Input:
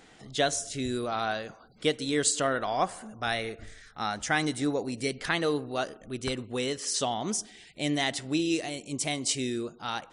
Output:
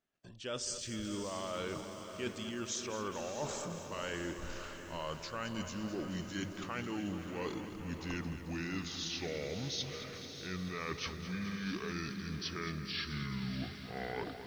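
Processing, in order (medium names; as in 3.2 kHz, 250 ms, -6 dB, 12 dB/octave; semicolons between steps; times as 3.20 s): gliding tape speed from 87% -> 53%; gate -50 dBFS, range -36 dB; reverse; compression 10:1, threshold -39 dBFS, peak gain reduction 18.5 dB; reverse; echo that smears into a reverb 619 ms, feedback 49%, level -10 dB; bit-crushed delay 217 ms, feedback 80%, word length 10-bit, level -11.5 dB; trim +2 dB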